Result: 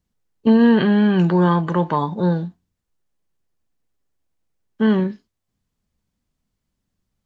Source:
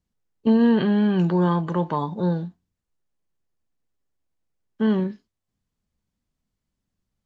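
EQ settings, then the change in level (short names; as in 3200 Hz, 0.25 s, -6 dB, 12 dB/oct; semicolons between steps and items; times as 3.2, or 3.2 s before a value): dynamic EQ 1800 Hz, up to +4 dB, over -39 dBFS, Q 1.1; +4.0 dB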